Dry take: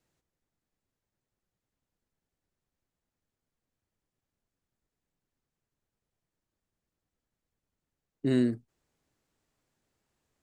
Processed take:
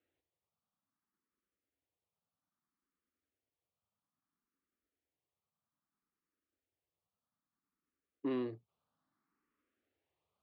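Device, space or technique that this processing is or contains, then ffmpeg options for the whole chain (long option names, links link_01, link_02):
barber-pole phaser into a guitar amplifier: -filter_complex "[0:a]asplit=2[link_01][link_02];[link_02]afreqshift=0.61[link_03];[link_01][link_03]amix=inputs=2:normalize=1,asoftclip=type=tanh:threshold=-27.5dB,highpass=91,equalizer=frequency=130:width_type=q:width=4:gain=-9,equalizer=frequency=280:width_type=q:width=4:gain=4,equalizer=frequency=1200:width_type=q:width=4:gain=9,lowpass=frequency=3700:width=0.5412,lowpass=frequency=3700:width=1.3066,volume=-4dB"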